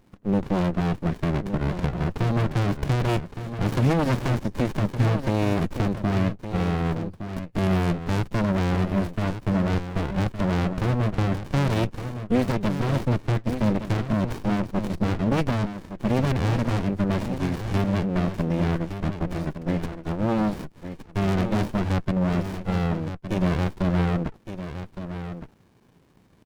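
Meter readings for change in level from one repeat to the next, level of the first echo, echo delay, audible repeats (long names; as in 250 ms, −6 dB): repeats not evenly spaced, −10.0 dB, 1,164 ms, 1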